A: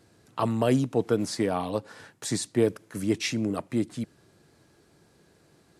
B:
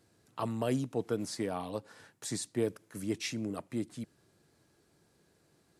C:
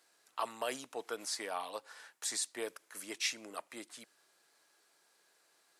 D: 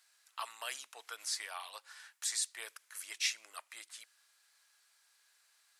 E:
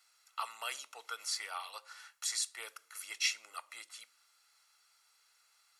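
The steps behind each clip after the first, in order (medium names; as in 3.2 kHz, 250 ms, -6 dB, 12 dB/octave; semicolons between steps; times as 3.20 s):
treble shelf 7.1 kHz +5 dB; trim -8.5 dB
high-pass 860 Hz 12 dB/octave; trim +3.5 dB
high-pass 1.4 kHz 12 dB/octave; trim +1.5 dB
reverberation RT60 0.55 s, pre-delay 4 ms, DRR 17 dB; trim -4 dB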